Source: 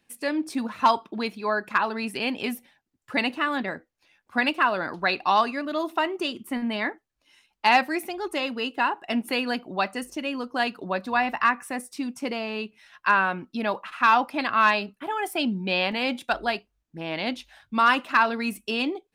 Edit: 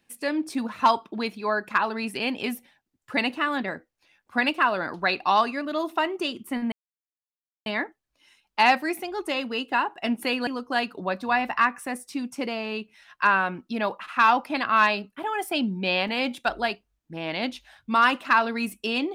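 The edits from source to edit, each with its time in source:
6.72 s: insert silence 0.94 s
9.53–10.31 s: delete

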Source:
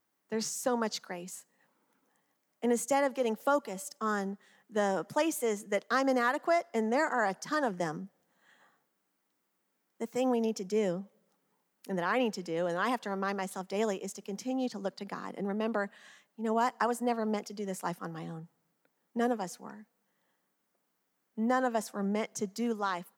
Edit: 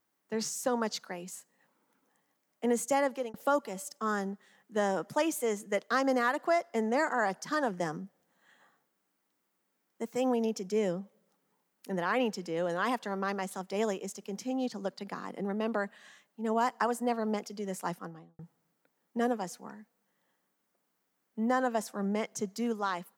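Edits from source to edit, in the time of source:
3.04–3.34 s: fade out equal-power
17.90–18.39 s: studio fade out

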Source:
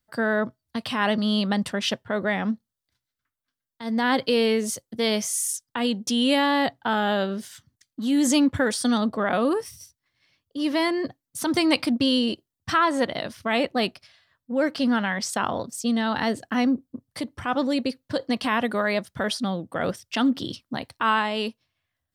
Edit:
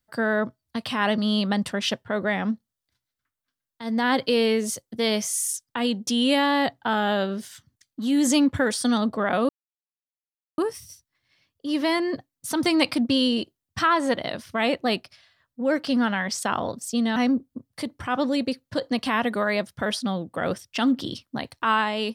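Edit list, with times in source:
9.49 s: insert silence 1.09 s
16.07–16.54 s: delete

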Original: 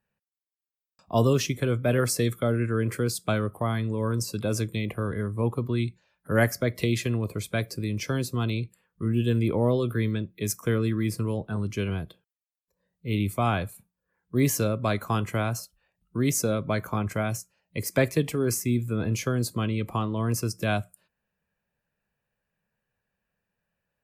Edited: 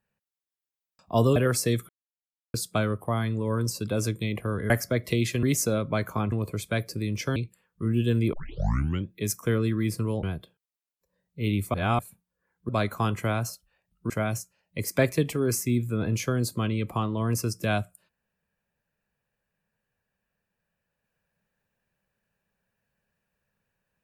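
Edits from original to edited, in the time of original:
1.36–1.89 s: delete
2.42–3.07 s: mute
5.23–6.41 s: delete
8.18–8.56 s: delete
9.53 s: tape start 0.75 s
11.43–11.90 s: delete
13.41–13.66 s: reverse
14.36–14.79 s: delete
16.20–17.09 s: move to 7.14 s

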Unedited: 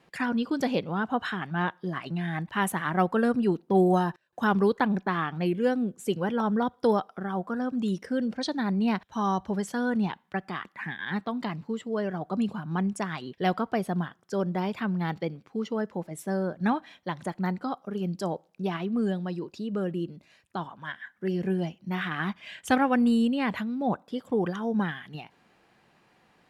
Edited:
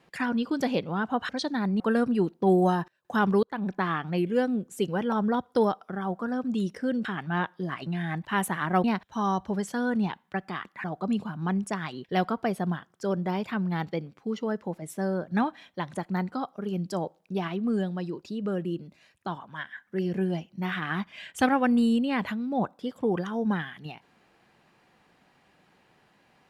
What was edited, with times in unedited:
1.29–3.08 s: swap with 8.33–8.84 s
4.71–5.04 s: fade in
10.84–12.13 s: delete

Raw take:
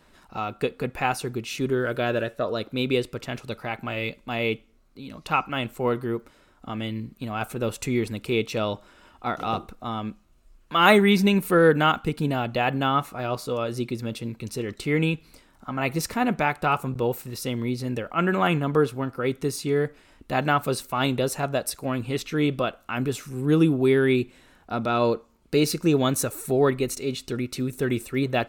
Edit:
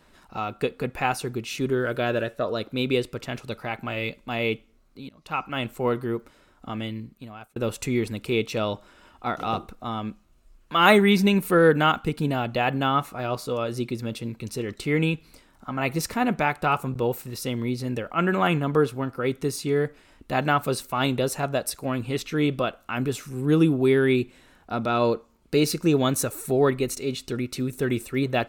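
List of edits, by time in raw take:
5.09–5.63 s: fade in, from -19.5 dB
6.76–7.56 s: fade out

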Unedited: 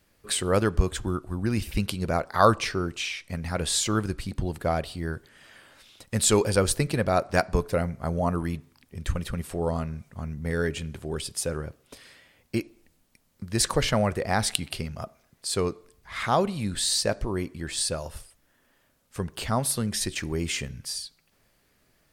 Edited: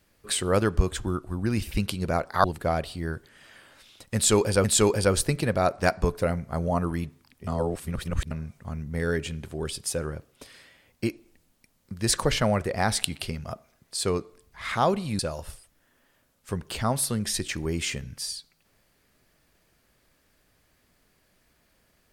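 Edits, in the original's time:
2.44–4.44 s: delete
6.15–6.64 s: loop, 2 plays
8.98–9.82 s: reverse
16.70–17.86 s: delete

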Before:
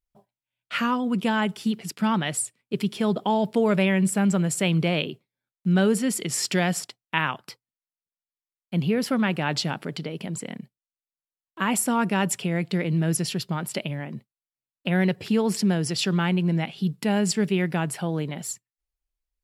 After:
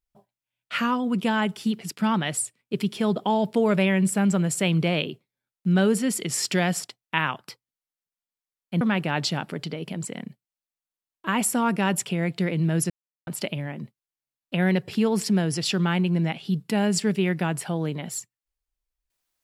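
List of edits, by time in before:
8.81–9.14 s: delete
13.23–13.60 s: mute

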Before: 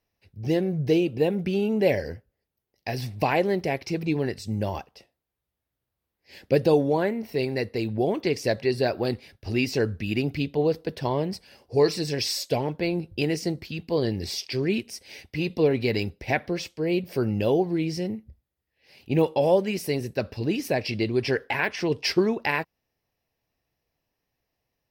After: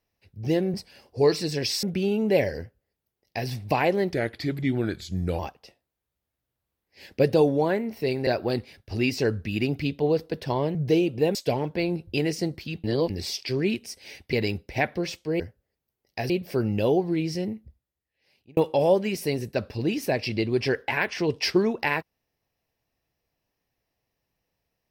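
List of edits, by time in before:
0.74–1.34 s: swap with 11.30–12.39 s
2.09–2.99 s: copy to 16.92 s
3.64–4.71 s: speed 85%
7.59–8.82 s: delete
13.88–14.14 s: reverse
15.37–15.85 s: delete
18.17–19.19 s: fade out

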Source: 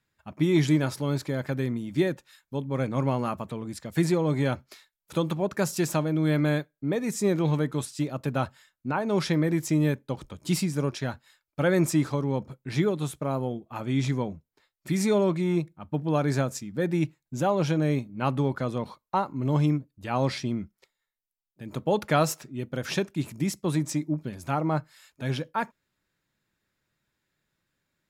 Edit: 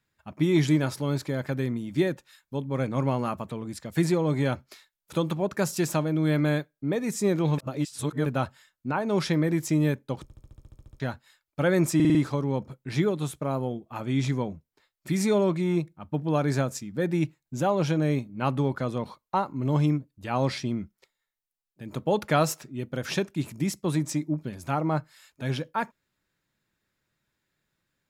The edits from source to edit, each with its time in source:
7.58–8.26 s: reverse
10.23 s: stutter in place 0.07 s, 11 plays
11.95 s: stutter 0.05 s, 5 plays

